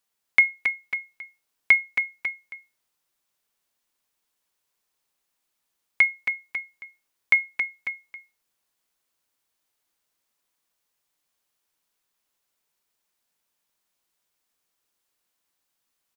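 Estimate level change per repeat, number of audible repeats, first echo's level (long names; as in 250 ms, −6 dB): −4.5 dB, 2, −6.0 dB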